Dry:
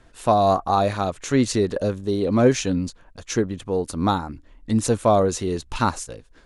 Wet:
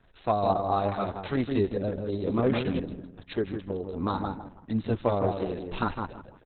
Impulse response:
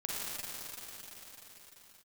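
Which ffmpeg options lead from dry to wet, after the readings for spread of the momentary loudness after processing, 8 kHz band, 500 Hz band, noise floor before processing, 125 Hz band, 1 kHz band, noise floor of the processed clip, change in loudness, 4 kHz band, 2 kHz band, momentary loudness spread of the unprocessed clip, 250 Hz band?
10 LU, under -40 dB, -7.0 dB, -52 dBFS, -6.5 dB, -7.5 dB, -55 dBFS, -7.5 dB, -10.5 dB, -7.0 dB, 9 LU, -7.0 dB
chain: -filter_complex "[0:a]asoftclip=type=hard:threshold=-8.5dB,asplit=2[a][b];[b]adelay=161,lowpass=f=1.6k:p=1,volume=-4dB,asplit=2[c][d];[d]adelay=161,lowpass=f=1.6k:p=1,volume=0.35,asplit=2[e][f];[f]adelay=161,lowpass=f=1.6k:p=1,volume=0.35,asplit=2[g][h];[h]adelay=161,lowpass=f=1.6k:p=1,volume=0.35[i];[c][e][g][i]amix=inputs=4:normalize=0[j];[a][j]amix=inputs=2:normalize=0,volume=-6.5dB" -ar 48000 -c:a libopus -b:a 6k

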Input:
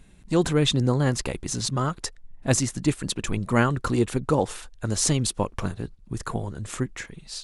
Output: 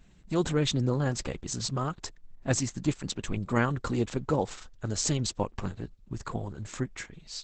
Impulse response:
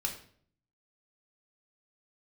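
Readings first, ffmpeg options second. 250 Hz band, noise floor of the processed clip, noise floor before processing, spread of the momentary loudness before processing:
-5.5 dB, -56 dBFS, -51 dBFS, 12 LU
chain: -af "volume=-4.5dB" -ar 48000 -c:a libopus -b:a 10k

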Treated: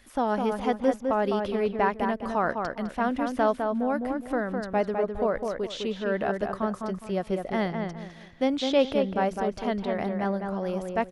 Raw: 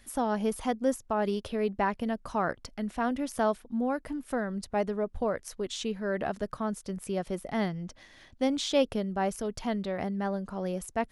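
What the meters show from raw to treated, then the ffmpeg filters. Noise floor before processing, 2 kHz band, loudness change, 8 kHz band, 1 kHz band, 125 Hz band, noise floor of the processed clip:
-58 dBFS, +4.5 dB, +4.0 dB, n/a, +4.5 dB, +2.0 dB, -47 dBFS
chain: -filter_complex "[0:a]bass=f=250:g=-4,treble=f=4k:g=-4,acrossover=split=5200[a][b];[b]acompressor=threshold=-58dB:ratio=4:attack=1:release=60[c];[a][c]amix=inputs=2:normalize=0,asplit=2[d][e];[e]adelay=206,lowpass=f=2.4k:p=1,volume=-4.5dB,asplit=2[f][g];[g]adelay=206,lowpass=f=2.4k:p=1,volume=0.3,asplit=2[h][i];[i]adelay=206,lowpass=f=2.4k:p=1,volume=0.3,asplit=2[j][k];[k]adelay=206,lowpass=f=2.4k:p=1,volume=0.3[l];[d][f][h][j][l]amix=inputs=5:normalize=0,volume=3.5dB"

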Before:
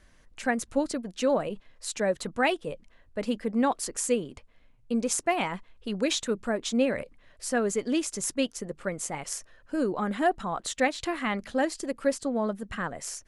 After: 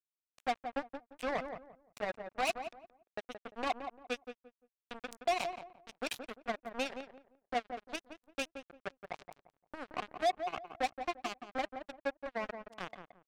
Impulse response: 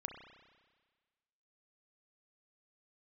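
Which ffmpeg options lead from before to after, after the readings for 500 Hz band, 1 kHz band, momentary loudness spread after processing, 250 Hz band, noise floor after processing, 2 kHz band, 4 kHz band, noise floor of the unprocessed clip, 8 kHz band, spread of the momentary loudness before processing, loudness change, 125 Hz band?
-11.0 dB, -5.0 dB, 14 LU, -17.5 dB, under -85 dBFS, -8.5 dB, -8.5 dB, -59 dBFS, -19.5 dB, 9 LU, -10.0 dB, -18.0 dB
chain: -filter_complex "[0:a]asplit=3[a][b][c];[a]bandpass=f=730:t=q:w=8,volume=0dB[d];[b]bandpass=f=1.09k:t=q:w=8,volume=-6dB[e];[c]bandpass=f=2.44k:t=q:w=8,volume=-9dB[f];[d][e][f]amix=inputs=3:normalize=0,adynamicequalizer=threshold=0.00112:dfrequency=200:dqfactor=2.1:tfrequency=200:tqfactor=2.1:attack=5:release=100:ratio=0.375:range=2:mode=cutabove:tftype=bell,acrossover=split=220|3000[g][h][i];[h]acompressor=threshold=-56dB:ratio=2[j];[g][j][i]amix=inputs=3:normalize=0,acrusher=bits=6:mix=0:aa=0.5,asplit=2[k][l];[l]adelay=173,lowpass=f=1.2k:p=1,volume=-7dB,asplit=2[m][n];[n]adelay=173,lowpass=f=1.2k:p=1,volume=0.26,asplit=2[o][p];[p]adelay=173,lowpass=f=1.2k:p=1,volume=0.26[q];[m][o][q]amix=inputs=3:normalize=0[r];[k][r]amix=inputs=2:normalize=0,volume=12dB"

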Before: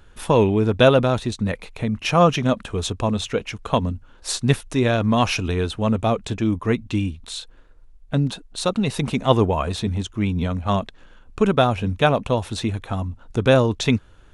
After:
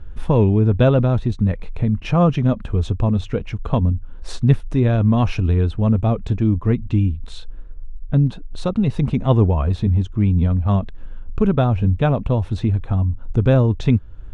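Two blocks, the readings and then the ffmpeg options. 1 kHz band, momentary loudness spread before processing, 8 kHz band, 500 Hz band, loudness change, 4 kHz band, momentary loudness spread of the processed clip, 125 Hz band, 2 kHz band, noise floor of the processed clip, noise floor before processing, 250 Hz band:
-4.5 dB, 10 LU, under -10 dB, -2.5 dB, +2.5 dB, -10.0 dB, 7 LU, +7.0 dB, -7.0 dB, -35 dBFS, -49 dBFS, +2.5 dB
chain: -filter_complex "[0:a]aemphasis=mode=reproduction:type=riaa,asplit=2[a][b];[b]acompressor=threshold=-23dB:ratio=6,volume=0dB[c];[a][c]amix=inputs=2:normalize=0,volume=-6.5dB"

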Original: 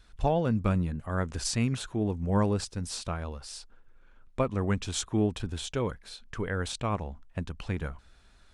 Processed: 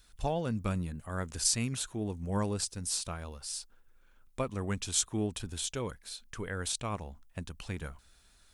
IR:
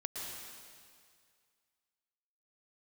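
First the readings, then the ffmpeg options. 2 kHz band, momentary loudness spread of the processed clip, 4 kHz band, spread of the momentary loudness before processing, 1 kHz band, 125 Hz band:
-4.0 dB, 13 LU, +1.0 dB, 13 LU, -5.5 dB, -6.5 dB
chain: -af "aemphasis=mode=production:type=75fm,volume=-5.5dB"

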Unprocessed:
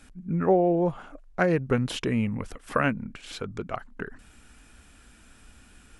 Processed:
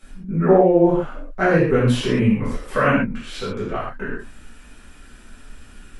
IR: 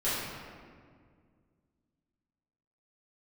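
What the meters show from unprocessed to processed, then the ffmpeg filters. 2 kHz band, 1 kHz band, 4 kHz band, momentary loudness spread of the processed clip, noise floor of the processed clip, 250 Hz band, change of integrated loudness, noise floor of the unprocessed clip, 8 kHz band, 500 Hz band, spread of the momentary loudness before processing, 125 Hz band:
+8.0 dB, +7.0 dB, +6.5 dB, 15 LU, -45 dBFS, +8.0 dB, +8.0 dB, -55 dBFS, +4.5 dB, +8.5 dB, 17 LU, +8.0 dB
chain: -filter_complex "[1:a]atrim=start_sample=2205,afade=t=out:st=0.2:d=0.01,atrim=end_sample=9261[a];[0:a][a]afir=irnorm=-1:irlink=0,volume=-1dB"

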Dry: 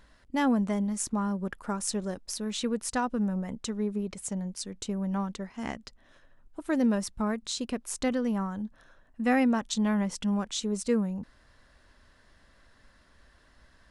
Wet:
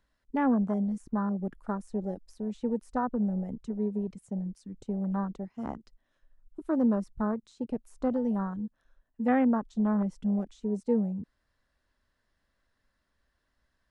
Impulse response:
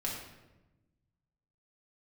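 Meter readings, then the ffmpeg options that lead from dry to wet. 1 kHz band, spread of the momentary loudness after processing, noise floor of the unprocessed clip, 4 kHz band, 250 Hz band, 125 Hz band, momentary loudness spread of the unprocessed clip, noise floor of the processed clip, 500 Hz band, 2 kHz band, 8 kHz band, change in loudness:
-1.0 dB, 12 LU, -62 dBFS, under -20 dB, 0.0 dB, 0.0 dB, 11 LU, -78 dBFS, -0.5 dB, -7.0 dB, under -20 dB, -0.5 dB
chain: -filter_complex "[0:a]afwtdn=0.0224,acrossover=split=210|1900[a][b][c];[c]acompressor=threshold=-59dB:ratio=6[d];[a][b][d]amix=inputs=3:normalize=0"

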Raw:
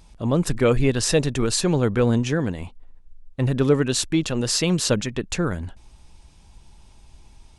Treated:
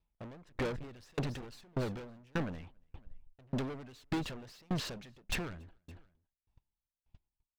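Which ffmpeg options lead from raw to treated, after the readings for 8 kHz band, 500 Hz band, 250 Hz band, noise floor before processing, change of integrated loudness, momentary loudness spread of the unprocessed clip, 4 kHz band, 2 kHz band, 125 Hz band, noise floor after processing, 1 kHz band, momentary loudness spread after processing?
-26.0 dB, -20.0 dB, -17.5 dB, -50 dBFS, -18.0 dB, 9 LU, -18.5 dB, -13.5 dB, -18.0 dB, under -85 dBFS, -13.0 dB, 18 LU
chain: -filter_complex "[0:a]agate=range=-38dB:threshold=-39dB:ratio=16:detection=peak,lowpass=2.9k,asplit=2[a][b];[b]alimiter=limit=-18.5dB:level=0:latency=1:release=32,volume=0dB[c];[a][c]amix=inputs=2:normalize=0,acompressor=threshold=-26dB:ratio=2.5,acrossover=split=2000[d][e];[d]asoftclip=type=tanh:threshold=-29.5dB[f];[e]aphaser=in_gain=1:out_gain=1:delay=1.1:decay=0.48:speed=0.84:type=sinusoidal[g];[f][g]amix=inputs=2:normalize=0,asoftclip=type=hard:threshold=-33dB,aecho=1:1:281|562:0.141|0.0367,aeval=exprs='val(0)*pow(10,-36*if(lt(mod(1.7*n/s,1),2*abs(1.7)/1000),1-mod(1.7*n/s,1)/(2*abs(1.7)/1000),(mod(1.7*n/s,1)-2*abs(1.7)/1000)/(1-2*abs(1.7)/1000))/20)':c=same,volume=4.5dB"

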